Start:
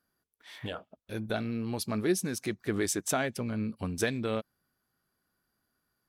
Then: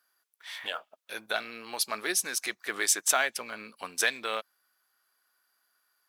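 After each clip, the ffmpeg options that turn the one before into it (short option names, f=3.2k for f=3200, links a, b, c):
-af "highpass=970,acrusher=bits=8:mode=log:mix=0:aa=0.000001,volume=8dB"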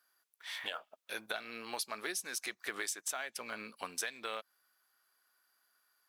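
-af "acompressor=threshold=-33dB:ratio=12,volume=-1.5dB"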